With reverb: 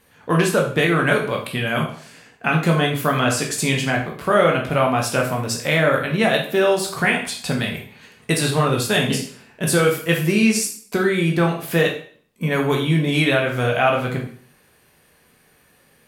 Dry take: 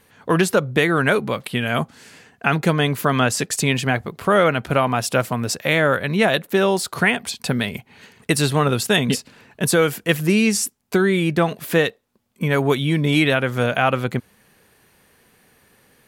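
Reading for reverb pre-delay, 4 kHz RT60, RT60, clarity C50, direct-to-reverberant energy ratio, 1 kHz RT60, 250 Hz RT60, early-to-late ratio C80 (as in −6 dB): 6 ms, 0.50 s, 0.50 s, 7.0 dB, −0.5 dB, 0.50 s, 0.50 s, 11.0 dB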